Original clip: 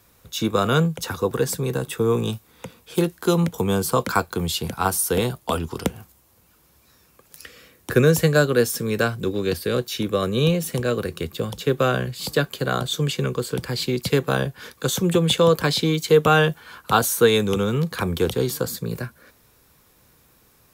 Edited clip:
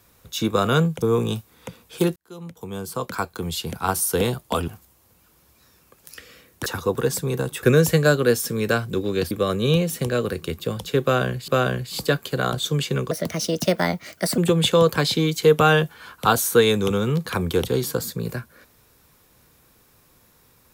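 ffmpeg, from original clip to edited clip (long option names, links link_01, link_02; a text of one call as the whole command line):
ffmpeg -i in.wav -filter_complex "[0:a]asplit=10[link_01][link_02][link_03][link_04][link_05][link_06][link_07][link_08][link_09][link_10];[link_01]atrim=end=1.022[link_11];[link_02]atrim=start=1.988:end=3.13,asetpts=PTS-STARTPTS,afade=type=out:start_time=1.138:duration=0.004:curve=hsin[link_12];[link_03]atrim=start=3.13:end=5.652,asetpts=PTS-STARTPTS,afade=type=in:duration=1.98[link_13];[link_04]atrim=start=5.948:end=7.932[link_14];[link_05]atrim=start=1.018:end=1.992[link_15];[link_06]atrim=start=7.928:end=9.612[link_16];[link_07]atrim=start=10.038:end=12.212[link_17];[link_08]atrim=start=11.758:end=13.394[link_18];[link_09]atrim=start=13.39:end=15.04,asetpts=PTS-STARTPTS,asetrate=57330,aresample=44100,atrim=end_sample=55973,asetpts=PTS-STARTPTS[link_19];[link_10]atrim=start=15.036[link_20];[link_12][link_13]concat=n=2:v=0:a=1[link_21];[link_11][link_21]acrossfade=duration=0.004:curve1=hsin:curve2=hsin[link_22];[link_22][link_14]acrossfade=duration=0.004:curve1=hsin:curve2=hsin[link_23];[link_23][link_15]acrossfade=duration=0.004:curve1=hsin:curve2=hsin[link_24];[link_24][link_16]acrossfade=duration=0.004:curve1=hsin:curve2=hsin[link_25];[link_25][link_17]acrossfade=duration=0.004:curve1=hsin:curve2=hsin[link_26];[link_26][link_18]acrossfade=duration=0.004:curve1=hsin:curve2=hsin[link_27];[link_27][link_19]acrossfade=duration=0.004:curve1=hsin:curve2=hsin[link_28];[link_28][link_20]acrossfade=duration=0.004:curve1=hsin:curve2=hsin" out.wav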